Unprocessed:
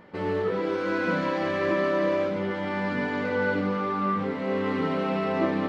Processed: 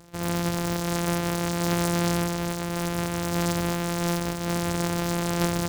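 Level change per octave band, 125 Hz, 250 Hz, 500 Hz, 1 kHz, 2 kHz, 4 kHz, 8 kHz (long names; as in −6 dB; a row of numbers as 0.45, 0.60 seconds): +8.0 dB, +0.5 dB, −4.5 dB, −1.0 dB, −3.5 dB, +8.5 dB, can't be measured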